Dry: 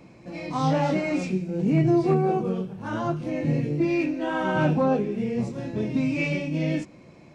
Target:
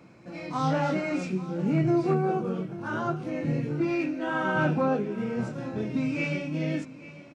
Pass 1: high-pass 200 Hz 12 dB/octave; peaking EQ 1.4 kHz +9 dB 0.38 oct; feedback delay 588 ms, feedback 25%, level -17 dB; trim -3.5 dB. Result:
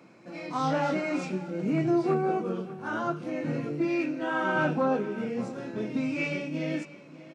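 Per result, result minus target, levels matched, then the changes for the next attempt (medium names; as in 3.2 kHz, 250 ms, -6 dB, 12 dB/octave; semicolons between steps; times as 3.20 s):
echo 253 ms early; 125 Hz band -4.5 dB
change: feedback delay 841 ms, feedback 25%, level -17 dB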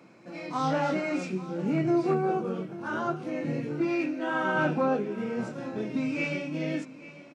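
125 Hz band -4.5 dB
change: high-pass 72 Hz 12 dB/octave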